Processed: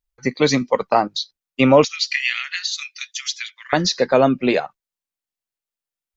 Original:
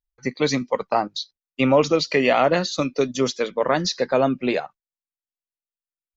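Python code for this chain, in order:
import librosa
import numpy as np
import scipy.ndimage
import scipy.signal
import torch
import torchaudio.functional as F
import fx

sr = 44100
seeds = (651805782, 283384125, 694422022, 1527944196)

y = fx.steep_highpass(x, sr, hz=1800.0, slope=36, at=(1.84, 3.73))
y = F.gain(torch.from_numpy(y), 4.5).numpy()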